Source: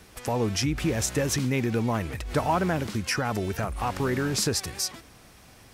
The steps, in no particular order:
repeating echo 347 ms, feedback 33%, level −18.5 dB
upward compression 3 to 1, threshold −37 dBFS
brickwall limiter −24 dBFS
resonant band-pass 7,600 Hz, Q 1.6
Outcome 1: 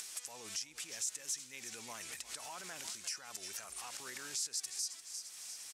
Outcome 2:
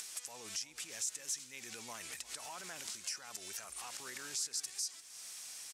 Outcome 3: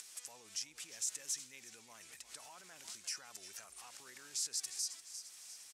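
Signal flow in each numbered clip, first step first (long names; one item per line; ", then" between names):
repeating echo, then brickwall limiter, then resonant band-pass, then upward compression
brickwall limiter, then resonant band-pass, then upward compression, then repeating echo
repeating echo, then brickwall limiter, then upward compression, then resonant band-pass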